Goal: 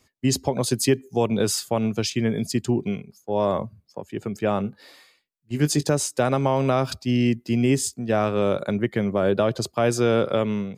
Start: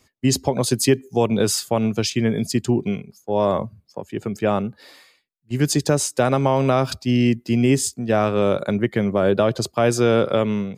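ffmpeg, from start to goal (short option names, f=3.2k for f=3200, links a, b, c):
-filter_complex "[0:a]asettb=1/sr,asplit=3[a][b][c];[a]atrim=end=4.574[d];[b]atrim=start=4.57:end=5.89,asetpts=PTS-STARTPTS,afade=t=in:d=0.004:c=qsin,afade=t=out:st=1.316:d=0.004:c=qsin,asplit=2[e][f];[f]adelay=20,volume=-10.5dB[g];[e][g]amix=inputs=2:normalize=0,atrim=end_sample=58212[h];[c]atrim=start=5.886[i];[d][h]acrossfade=d=0.004:c1=hsin:c2=qsin[j];[j][i]acrossfade=d=0.004:c1=qsin:c2=hsin,volume=-3dB"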